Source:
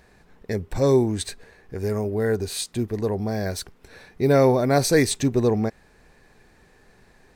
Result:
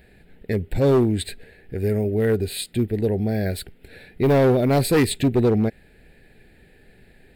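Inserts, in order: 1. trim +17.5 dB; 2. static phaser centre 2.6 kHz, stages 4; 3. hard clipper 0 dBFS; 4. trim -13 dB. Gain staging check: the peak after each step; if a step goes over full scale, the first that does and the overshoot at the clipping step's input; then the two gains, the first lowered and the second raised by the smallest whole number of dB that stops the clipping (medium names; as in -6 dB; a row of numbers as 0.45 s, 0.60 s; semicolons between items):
+10.0 dBFS, +8.5 dBFS, 0.0 dBFS, -13.0 dBFS; step 1, 8.5 dB; step 1 +8.5 dB, step 4 -4 dB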